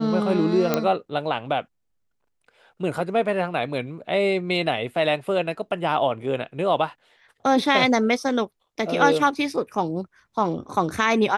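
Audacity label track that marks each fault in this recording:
0.740000	0.740000	click −6 dBFS

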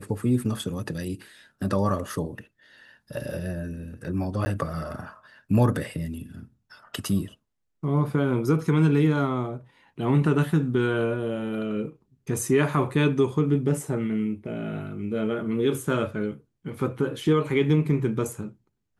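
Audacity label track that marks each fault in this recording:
4.450000	4.460000	drop-out 10 ms

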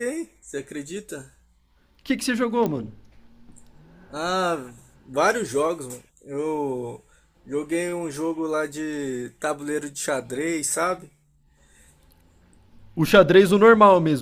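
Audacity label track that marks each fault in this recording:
2.660000	2.660000	click −13 dBFS

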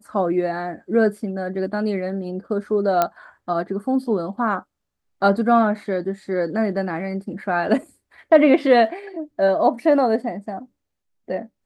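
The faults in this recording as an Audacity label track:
3.020000	3.020000	click −5 dBFS

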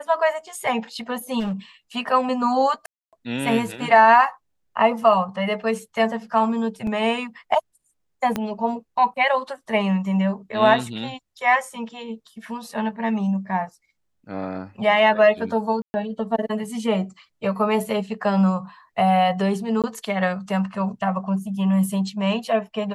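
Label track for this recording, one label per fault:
1.390000	1.530000	clipping −22.5 dBFS
2.860000	3.130000	drop-out 267 ms
6.870000	6.870000	drop-out 3 ms
8.360000	8.360000	click −10 dBFS
15.820000	15.940000	drop-out 120 ms
19.820000	19.840000	drop-out 17 ms

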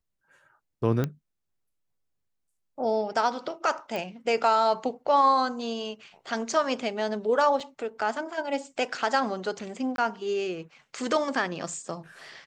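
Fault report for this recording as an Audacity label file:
1.040000	1.040000	click −15 dBFS
3.960000	3.960000	click
7.600000	7.600000	drop-out 3.9 ms
9.960000	9.980000	drop-out 22 ms

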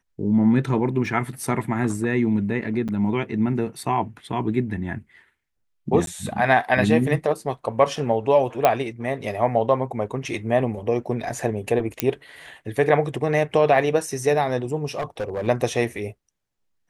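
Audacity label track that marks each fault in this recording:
1.060000	1.060000	drop-out 2.1 ms
2.880000	2.890000	drop-out 7.3 ms
6.060000	6.070000	drop-out 12 ms
8.650000	8.650000	click −4 dBFS
12.000000	12.000000	click −3 dBFS
14.950000	15.480000	clipping −22 dBFS

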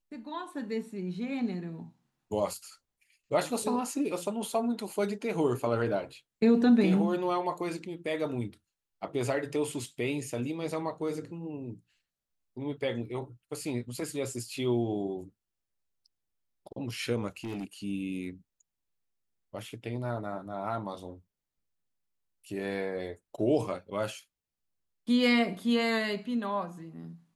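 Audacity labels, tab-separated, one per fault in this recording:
17.270000	17.640000	clipping −32.5 dBFS

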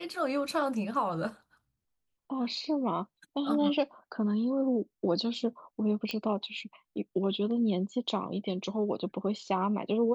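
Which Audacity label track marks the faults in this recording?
6.110000	6.110000	click −19 dBFS

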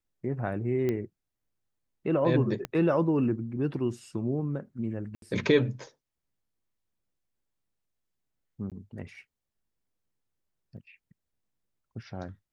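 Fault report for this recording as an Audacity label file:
0.890000	0.890000	click −18 dBFS
2.650000	2.650000	click −18 dBFS
5.150000	5.220000	drop-out 72 ms
8.700000	8.720000	drop-out 17 ms
10.770000	10.770000	drop-out 3 ms

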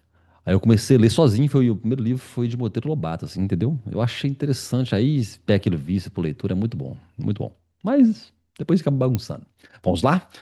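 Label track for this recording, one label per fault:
9.150000	9.150000	click −10 dBFS

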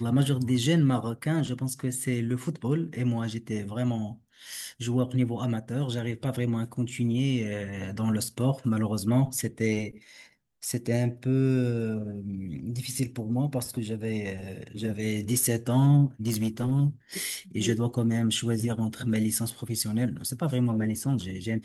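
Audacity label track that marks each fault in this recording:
16.270000	16.720000	clipping −22.5 dBFS

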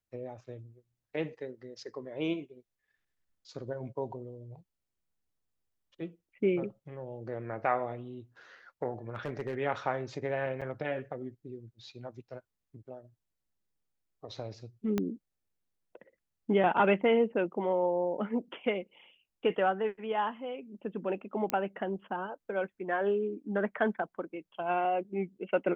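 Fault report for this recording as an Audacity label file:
9.090000	9.570000	clipping −29.5 dBFS
10.610000	10.620000	drop-out 6.5 ms
14.980000	14.980000	click −17 dBFS
21.500000	21.500000	click −15 dBFS

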